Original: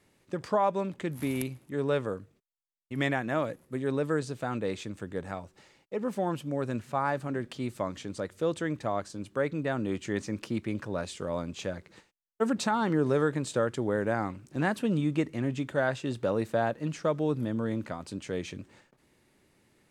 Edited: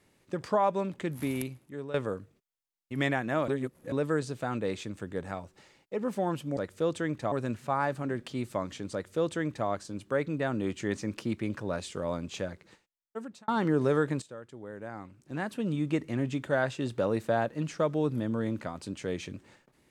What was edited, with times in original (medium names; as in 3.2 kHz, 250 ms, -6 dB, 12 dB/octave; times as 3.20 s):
1.00–1.94 s: fade out equal-power, to -14 dB
3.48–3.92 s: reverse
8.18–8.93 s: copy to 6.57 s
11.64–12.73 s: fade out
13.47–15.32 s: fade in quadratic, from -17 dB